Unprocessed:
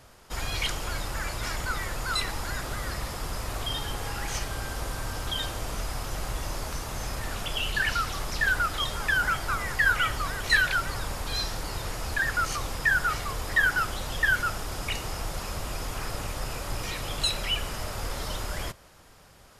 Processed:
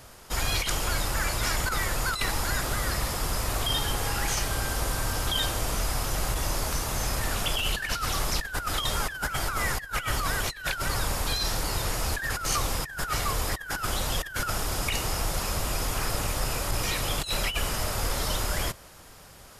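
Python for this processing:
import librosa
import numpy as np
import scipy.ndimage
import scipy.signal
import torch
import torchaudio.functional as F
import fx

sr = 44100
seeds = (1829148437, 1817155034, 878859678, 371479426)

y = fx.high_shelf(x, sr, hz=7200.0, db=6.5)
y = fx.over_compress(y, sr, threshold_db=-29.0, ratio=-0.5)
y = y * librosa.db_to_amplitude(2.5)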